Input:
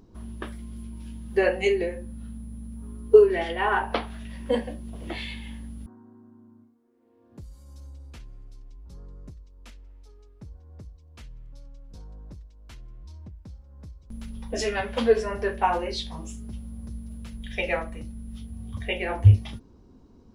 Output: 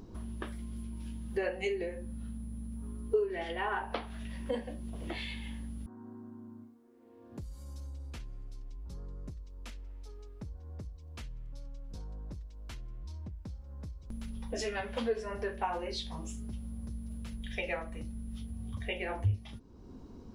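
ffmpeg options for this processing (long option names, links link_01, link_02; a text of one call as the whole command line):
ffmpeg -i in.wav -af "acompressor=threshold=-48dB:ratio=2,volume=4.5dB" out.wav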